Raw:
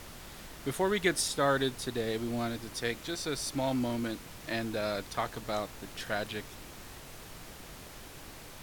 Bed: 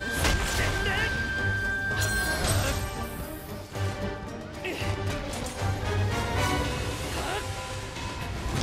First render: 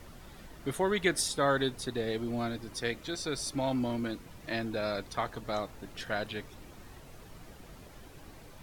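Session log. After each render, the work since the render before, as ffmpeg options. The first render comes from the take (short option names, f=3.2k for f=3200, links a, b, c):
-af "afftdn=nr=9:nf=-48"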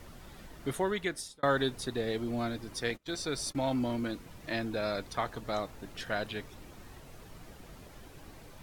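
-filter_complex "[0:a]asettb=1/sr,asplit=3[a][b][c];[a]atrim=end=2.904[d];[b]atrim=start=2.9:end=3.55,asetpts=PTS-STARTPTS,afade=t=in:d=0.004:c=qsin,afade=t=out:st=0.646:d=0.004:c=qsin,agate=range=-27dB:threshold=-43dB:ratio=16:release=100:detection=peak[e];[c]atrim=start=3.546[f];[d][e]acrossfade=d=0.004:c1=hsin:c2=qsin[g];[g][f]acrossfade=d=0.004:c1=qsin:c2=hsin,asplit=2[h][i];[h]atrim=end=1.43,asetpts=PTS-STARTPTS,afade=t=out:st=0.72:d=0.71[j];[i]atrim=start=1.43,asetpts=PTS-STARTPTS,afade=t=in:d=0.004:c=hsin[k];[j][k]concat=n=2:v=0:a=1"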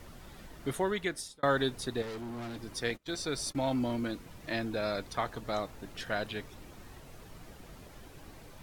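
-filter_complex "[0:a]asettb=1/sr,asplit=3[a][b][c];[a]atrim=end=2.024[d];[b]atrim=start=2.02:end=2.57,asetpts=PTS-STARTPTS,afade=t=in:d=0.004:c=qsin,afade=t=out:st=0.546:d=0.004:c=qsin,asoftclip=type=hard:threshold=-38dB[e];[c]atrim=start=2.566[f];[d][e]acrossfade=d=0.004:c1=hsin:c2=qsin[g];[g][f]acrossfade=d=0.004:c1=qsin:c2=hsin"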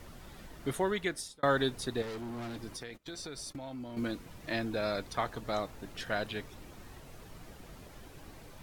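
-filter_complex "[0:a]asettb=1/sr,asplit=3[a][b][c];[a]atrim=end=2.674[d];[b]atrim=start=2.67:end=3.97,asetpts=PTS-STARTPTS,afade=t=in:d=0.004:c=qsin,afade=t=out:st=1.296:d=0.004:c=qsin,acompressor=threshold=-38dB:ratio=16:attack=3.2:release=140:knee=1:detection=peak[e];[c]atrim=start=3.966[f];[d][e]acrossfade=d=0.004:c1=hsin:c2=qsin[g];[g][f]acrossfade=d=0.004:c1=qsin:c2=hsin"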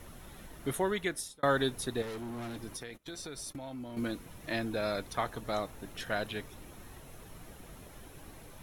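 -af "equalizer=f=11k:t=o:w=0.25:g=11,bandreject=f=4.7k:w=10"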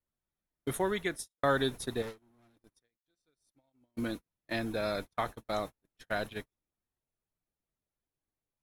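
-af "agate=range=-43dB:threshold=-37dB:ratio=16:detection=peak,bandreject=f=2.9k:w=23"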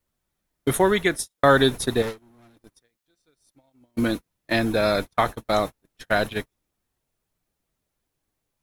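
-af "volume=12dB,alimiter=limit=-3dB:level=0:latency=1"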